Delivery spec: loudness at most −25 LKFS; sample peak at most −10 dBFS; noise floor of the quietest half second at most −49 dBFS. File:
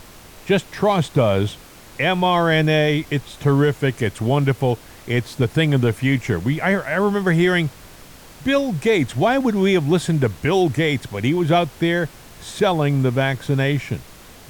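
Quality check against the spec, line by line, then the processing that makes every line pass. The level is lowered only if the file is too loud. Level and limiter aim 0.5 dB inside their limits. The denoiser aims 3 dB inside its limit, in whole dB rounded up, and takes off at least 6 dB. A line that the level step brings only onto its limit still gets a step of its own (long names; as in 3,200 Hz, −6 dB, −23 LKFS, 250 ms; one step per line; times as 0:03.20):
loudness −19.5 LKFS: out of spec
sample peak −7.5 dBFS: out of spec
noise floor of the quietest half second −42 dBFS: out of spec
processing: broadband denoise 6 dB, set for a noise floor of −42 dBFS
level −6 dB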